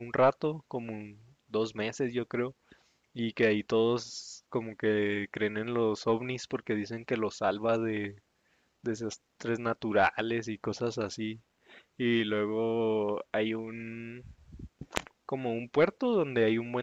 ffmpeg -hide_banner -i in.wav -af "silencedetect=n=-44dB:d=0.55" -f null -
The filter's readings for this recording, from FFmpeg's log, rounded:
silence_start: 8.14
silence_end: 8.84 | silence_duration: 0.70